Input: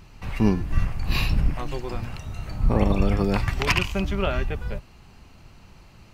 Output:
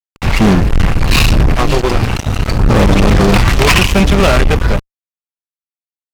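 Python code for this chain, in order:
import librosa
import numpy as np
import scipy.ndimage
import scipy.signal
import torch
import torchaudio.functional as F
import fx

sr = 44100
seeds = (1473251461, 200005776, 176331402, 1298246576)

y = fx.fuzz(x, sr, gain_db=30.0, gate_db=-35.0)
y = fx.doppler_dist(y, sr, depth_ms=0.13)
y = y * librosa.db_to_amplitude(7.5)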